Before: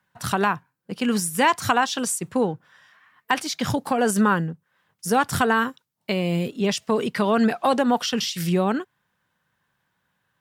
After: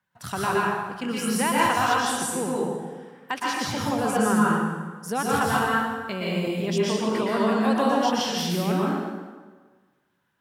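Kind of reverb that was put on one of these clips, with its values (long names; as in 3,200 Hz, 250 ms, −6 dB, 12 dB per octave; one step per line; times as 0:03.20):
dense smooth reverb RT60 1.4 s, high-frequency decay 0.75×, pre-delay 105 ms, DRR −6 dB
level −8 dB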